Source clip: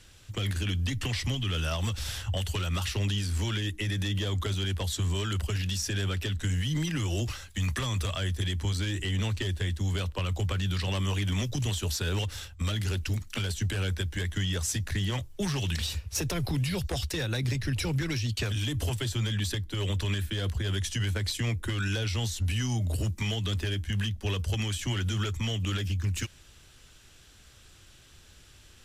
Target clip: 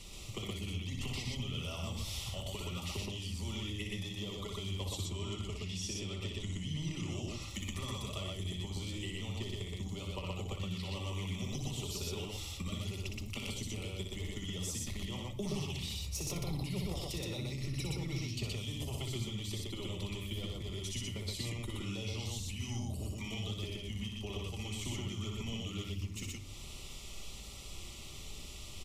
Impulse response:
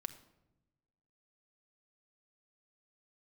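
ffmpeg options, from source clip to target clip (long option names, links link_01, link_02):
-filter_complex "[0:a]asettb=1/sr,asplit=3[link_01][link_02][link_03];[link_01]atrim=end=4.934[link_04];[link_02]atrim=start=4.93:end=7.42,asetpts=PTS-STARTPTS,afade=type=in:duration=0.004:curve=qsin,afade=type=out:start_time=2.486:duration=0.004:curve=qsin,lowpass=8900[link_05];[link_03]atrim=start=7.416[link_06];[link_04][link_05]acrossfade=duration=0.004:curve1=hsin:curve2=qsin[link_07];[link_07][link_06]acrossfade=duration=0.004:curve1=qsin:curve2=hsin,acompressor=threshold=-43dB:ratio=10,asuperstop=centerf=1600:order=4:qfactor=2.1,aecho=1:1:61.22|122.4:0.562|0.891[link_08];[1:a]atrim=start_sample=2205[link_09];[link_08][link_09]afir=irnorm=-1:irlink=0,volume=7dB"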